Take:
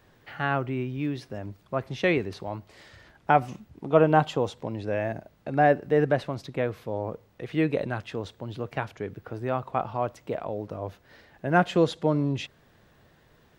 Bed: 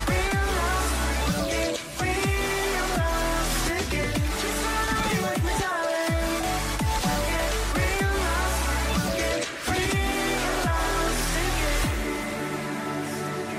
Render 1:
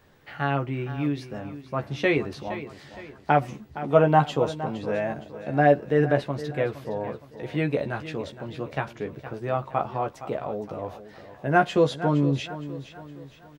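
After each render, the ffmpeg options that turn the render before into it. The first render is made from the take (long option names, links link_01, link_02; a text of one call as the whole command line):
ffmpeg -i in.wav -filter_complex "[0:a]asplit=2[link_01][link_02];[link_02]adelay=14,volume=-5dB[link_03];[link_01][link_03]amix=inputs=2:normalize=0,aecho=1:1:465|930|1395|1860:0.211|0.0909|0.0391|0.0168" out.wav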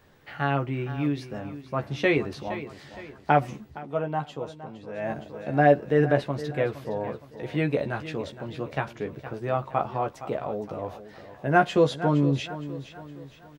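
ffmpeg -i in.wav -filter_complex "[0:a]asplit=3[link_01][link_02][link_03];[link_01]atrim=end=3.85,asetpts=PTS-STARTPTS,afade=type=out:start_time=3.7:duration=0.15:silence=0.298538[link_04];[link_02]atrim=start=3.85:end=4.95,asetpts=PTS-STARTPTS,volume=-10.5dB[link_05];[link_03]atrim=start=4.95,asetpts=PTS-STARTPTS,afade=type=in:duration=0.15:silence=0.298538[link_06];[link_04][link_05][link_06]concat=n=3:v=0:a=1" out.wav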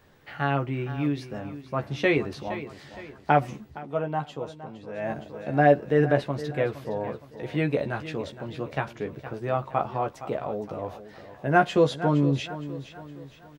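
ffmpeg -i in.wav -af anull out.wav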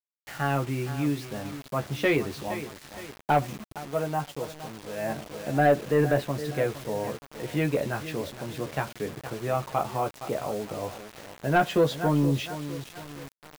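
ffmpeg -i in.wav -af "acrusher=bits=6:mix=0:aa=0.000001,asoftclip=type=tanh:threshold=-12.5dB" out.wav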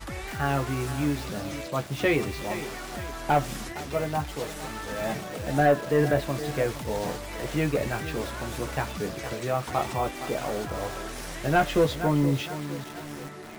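ffmpeg -i in.wav -i bed.wav -filter_complex "[1:a]volume=-12dB[link_01];[0:a][link_01]amix=inputs=2:normalize=0" out.wav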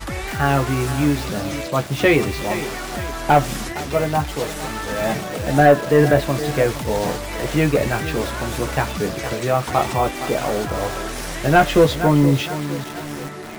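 ffmpeg -i in.wav -af "volume=8.5dB" out.wav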